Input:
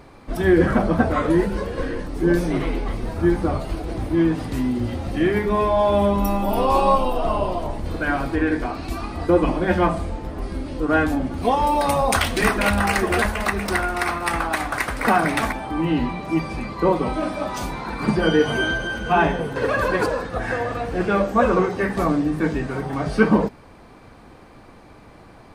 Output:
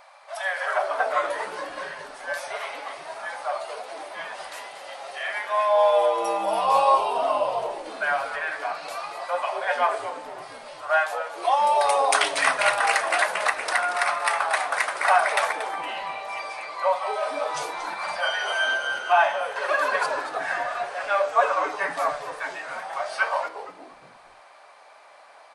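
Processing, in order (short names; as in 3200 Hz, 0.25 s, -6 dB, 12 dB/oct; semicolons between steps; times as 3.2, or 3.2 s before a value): brick-wall FIR band-pass 540–12000 Hz; frequency-shifting echo 0.232 s, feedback 35%, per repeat -140 Hz, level -11.5 dB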